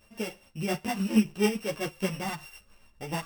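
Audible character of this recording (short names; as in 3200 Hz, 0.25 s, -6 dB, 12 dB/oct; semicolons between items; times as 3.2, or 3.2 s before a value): a buzz of ramps at a fixed pitch in blocks of 16 samples; tremolo triangle 7.1 Hz, depth 60%; a shimmering, thickened sound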